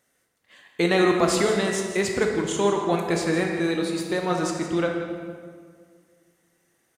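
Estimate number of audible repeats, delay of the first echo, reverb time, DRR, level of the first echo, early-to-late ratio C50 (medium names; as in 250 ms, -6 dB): 1, 164 ms, 1.9 s, 1.0 dB, -12.0 dB, 3.0 dB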